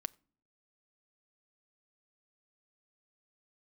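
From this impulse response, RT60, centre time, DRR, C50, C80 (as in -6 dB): not exponential, 1 ms, 21.0 dB, 26.5 dB, 29.5 dB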